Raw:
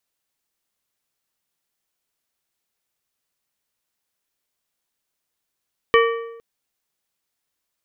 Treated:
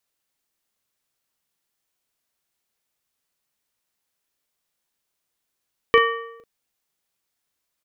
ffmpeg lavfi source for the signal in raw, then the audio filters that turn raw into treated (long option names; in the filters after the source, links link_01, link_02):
-f lavfi -i "aevalsrc='0.282*pow(10,-3*t/0.94)*sin(2*PI*461*t)+0.2*pow(10,-3*t/0.714)*sin(2*PI*1152.5*t)+0.141*pow(10,-3*t/0.62)*sin(2*PI*1844*t)+0.1*pow(10,-3*t/0.58)*sin(2*PI*2305*t)+0.0708*pow(10,-3*t/0.536)*sin(2*PI*2996.5*t)':duration=0.46:sample_rate=44100"
-filter_complex "[0:a]asplit=2[link_01][link_02];[link_02]adelay=38,volume=-9dB[link_03];[link_01][link_03]amix=inputs=2:normalize=0"